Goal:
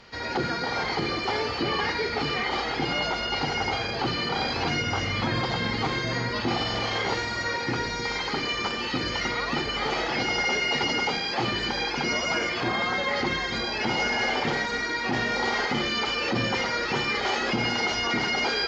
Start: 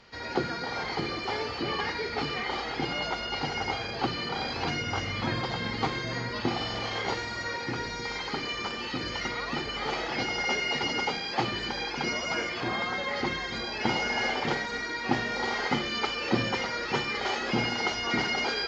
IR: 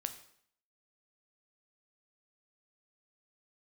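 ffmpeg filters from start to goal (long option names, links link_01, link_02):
-af "alimiter=limit=-21.5dB:level=0:latency=1:release=33,volume=5dB"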